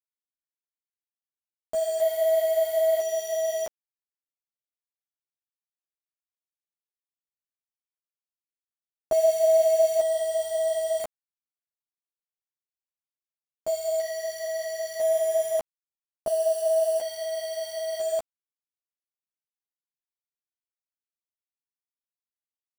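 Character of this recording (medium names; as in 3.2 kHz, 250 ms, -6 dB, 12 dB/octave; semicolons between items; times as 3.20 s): random-step tremolo 1 Hz, depth 75%; a quantiser's noise floor 6-bit, dither none; a shimmering, thickened sound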